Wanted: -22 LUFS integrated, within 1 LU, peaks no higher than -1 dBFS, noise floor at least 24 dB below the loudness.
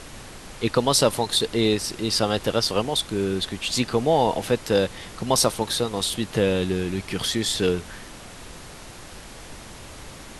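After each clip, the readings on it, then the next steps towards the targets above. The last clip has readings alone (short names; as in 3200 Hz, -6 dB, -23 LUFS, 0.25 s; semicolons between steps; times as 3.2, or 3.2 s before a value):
noise floor -42 dBFS; noise floor target -47 dBFS; loudness -23.0 LUFS; peak -4.5 dBFS; loudness target -22.0 LUFS
-> noise print and reduce 6 dB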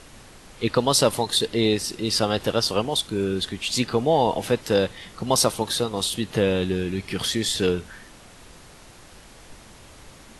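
noise floor -48 dBFS; loudness -23.0 LUFS; peak -4.5 dBFS; loudness target -22.0 LUFS
-> gain +1 dB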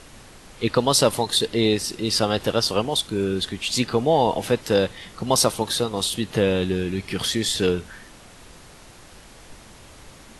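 loudness -22.0 LUFS; peak -3.5 dBFS; noise floor -47 dBFS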